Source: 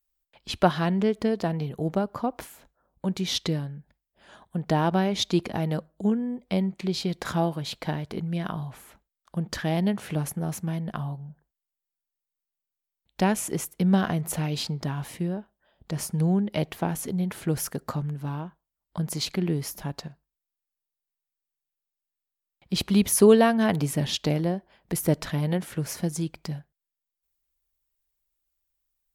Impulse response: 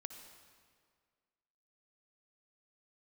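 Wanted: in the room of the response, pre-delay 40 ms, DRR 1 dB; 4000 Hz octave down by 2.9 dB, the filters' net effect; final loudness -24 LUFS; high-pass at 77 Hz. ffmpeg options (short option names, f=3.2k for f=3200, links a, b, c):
-filter_complex "[0:a]highpass=77,equalizer=f=4k:t=o:g=-3.5,asplit=2[a][b];[1:a]atrim=start_sample=2205,adelay=40[c];[b][c]afir=irnorm=-1:irlink=0,volume=3dB[d];[a][d]amix=inputs=2:normalize=0,volume=1dB"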